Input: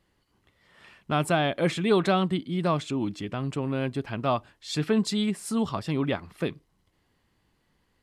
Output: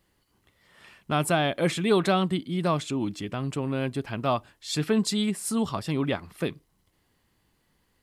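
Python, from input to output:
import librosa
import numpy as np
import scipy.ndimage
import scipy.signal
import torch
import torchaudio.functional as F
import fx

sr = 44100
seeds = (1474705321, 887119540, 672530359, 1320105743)

y = fx.high_shelf(x, sr, hz=8200.0, db=10.5)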